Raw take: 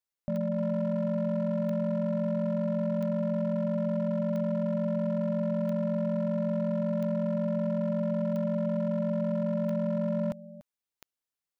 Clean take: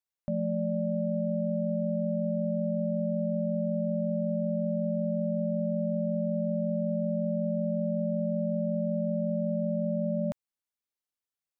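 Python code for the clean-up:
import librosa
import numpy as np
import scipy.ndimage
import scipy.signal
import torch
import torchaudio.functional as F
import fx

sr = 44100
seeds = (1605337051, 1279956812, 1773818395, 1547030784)

y = fx.fix_declip(x, sr, threshold_db=-24.0)
y = fx.fix_declick_ar(y, sr, threshold=10.0)
y = fx.fix_echo_inverse(y, sr, delay_ms=291, level_db=-17.0)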